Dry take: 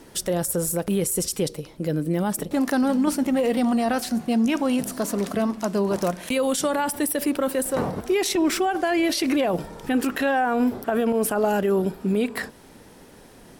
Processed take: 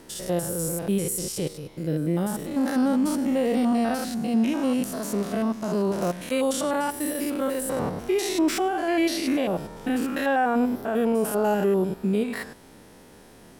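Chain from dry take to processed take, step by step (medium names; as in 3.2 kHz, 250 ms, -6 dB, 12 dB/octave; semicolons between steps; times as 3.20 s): spectrogram pixelated in time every 100 ms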